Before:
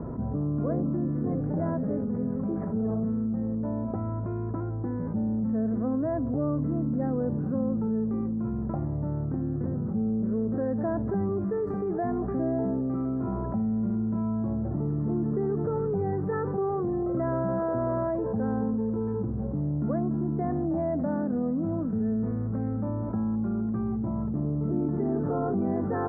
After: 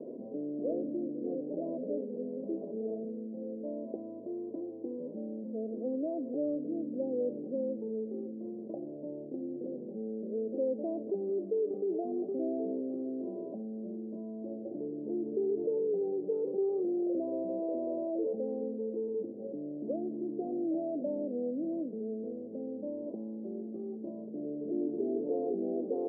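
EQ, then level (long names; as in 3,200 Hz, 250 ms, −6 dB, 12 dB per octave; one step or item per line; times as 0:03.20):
high-pass filter 320 Hz 24 dB per octave
elliptic low-pass filter 580 Hz, stop band 70 dB
0.0 dB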